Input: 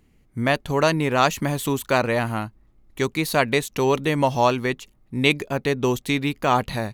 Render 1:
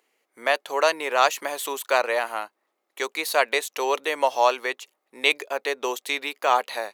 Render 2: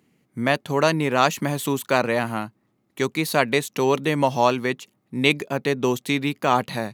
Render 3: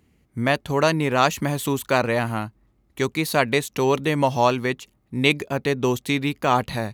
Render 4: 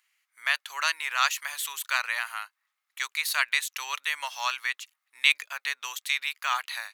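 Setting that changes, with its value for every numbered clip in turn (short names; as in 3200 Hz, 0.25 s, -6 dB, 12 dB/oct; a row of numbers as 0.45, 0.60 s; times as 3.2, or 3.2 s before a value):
HPF, cutoff: 470, 130, 49, 1300 Hz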